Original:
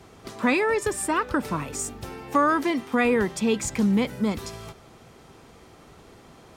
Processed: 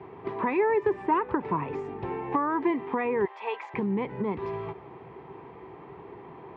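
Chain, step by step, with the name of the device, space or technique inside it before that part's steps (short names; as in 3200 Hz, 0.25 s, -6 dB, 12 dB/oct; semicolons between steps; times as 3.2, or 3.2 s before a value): 3.25–3.74 HPF 650 Hz 24 dB/oct; bass amplifier (compressor 3:1, threshold -30 dBFS, peak gain reduction 10.5 dB; speaker cabinet 81–2200 Hz, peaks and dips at 93 Hz -7 dB, 230 Hz -7 dB, 390 Hz +8 dB, 580 Hz -7 dB, 950 Hz +9 dB, 1400 Hz -10 dB); gain +4 dB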